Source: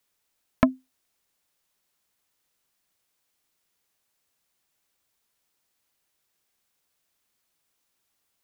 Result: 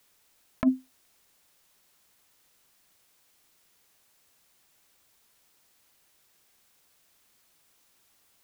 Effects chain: negative-ratio compressor -26 dBFS, ratio -1; gain +4 dB

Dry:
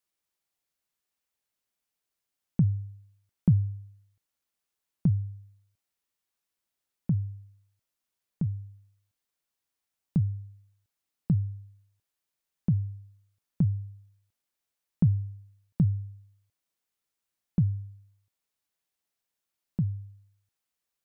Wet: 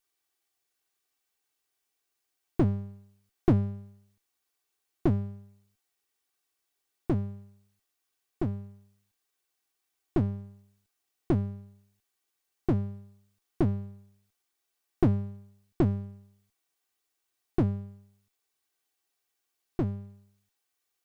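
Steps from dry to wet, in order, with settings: minimum comb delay 2.6 ms; low shelf 130 Hz -8 dB; gain +6 dB

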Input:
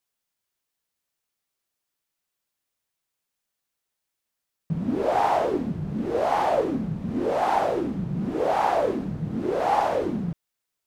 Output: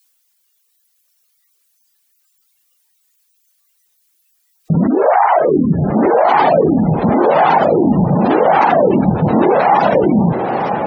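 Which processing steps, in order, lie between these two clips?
tilt +3 dB/oct; in parallel at +2 dB: negative-ratio compressor -35 dBFS, ratio -1; on the sum: reverb removal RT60 1.2 s; 5–6.07 LPF 2700 Hz 12 dB/oct; on a send: diffused feedback echo 0.949 s, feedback 58%, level -8 dB; on the sum: spectral noise reduction 12 dB; spectral gate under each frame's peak -25 dB strong; maximiser +14.5 dB; gain -1 dB

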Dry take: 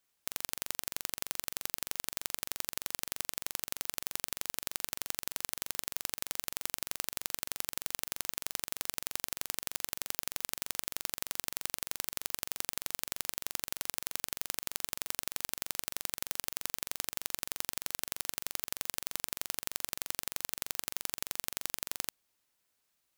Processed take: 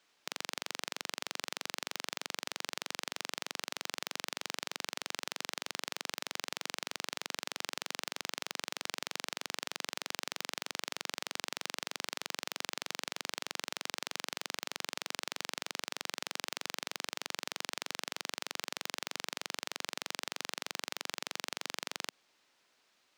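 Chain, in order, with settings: limiter -15 dBFS, peak gain reduction 10 dB; three-band isolator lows -16 dB, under 190 Hz, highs -20 dB, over 6100 Hz; gain +12 dB

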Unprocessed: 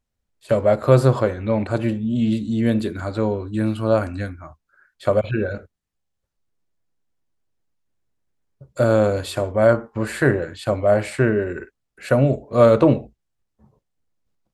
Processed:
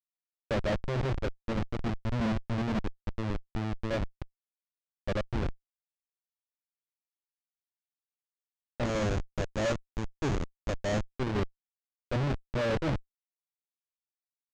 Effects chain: Schmitt trigger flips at -18.5 dBFS; air absorption 150 m; limiter -24 dBFS, peak gain reduction 8 dB; 8.85–11.14 bell 6700 Hz +12 dB 0.41 oct; gain -2.5 dB

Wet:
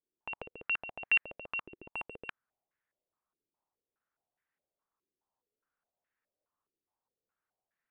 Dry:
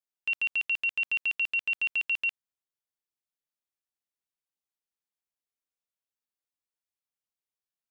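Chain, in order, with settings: 1.88–2.28 sample leveller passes 3; stepped low-pass 4.8 Hz 370–1800 Hz; gain +5.5 dB

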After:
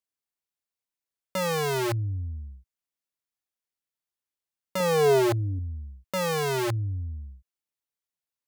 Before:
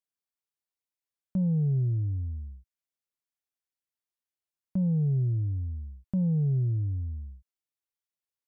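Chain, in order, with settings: short-mantissa float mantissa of 8-bit; wrapped overs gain 24 dB; 4.8–5.59 small resonant body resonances 280/420/660 Hz, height 10 dB, ringing for 35 ms

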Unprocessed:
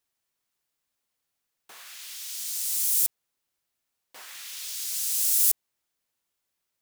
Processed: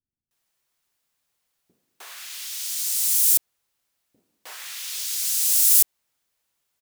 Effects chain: bands offset in time lows, highs 0.31 s, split 290 Hz; gain +5.5 dB

